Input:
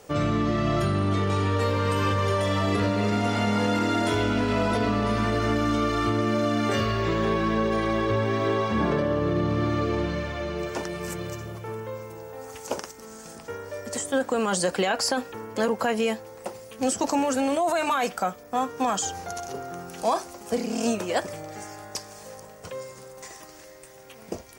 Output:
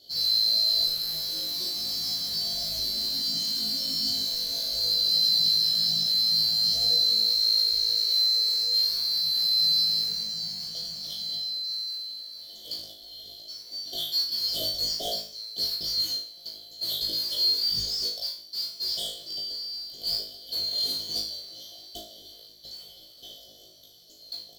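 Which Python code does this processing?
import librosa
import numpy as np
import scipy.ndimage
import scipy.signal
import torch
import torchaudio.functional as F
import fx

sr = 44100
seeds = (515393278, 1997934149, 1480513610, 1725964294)

y = fx.band_swap(x, sr, width_hz=4000)
y = fx.high_shelf_res(y, sr, hz=4100.0, db=-10.0, q=1.5)
y = np.clip(y, -10.0 ** (-27.5 / 20.0), 10.0 ** (-27.5 / 20.0))
y = fx.brickwall_bandstop(y, sr, low_hz=740.0, high_hz=3000.0)
y = fx.peak_eq(y, sr, hz=2600.0, db=7.5, octaves=0.32)
y = fx.mod_noise(y, sr, seeds[0], snr_db=19)
y = fx.room_flutter(y, sr, wall_m=3.2, rt60_s=0.46)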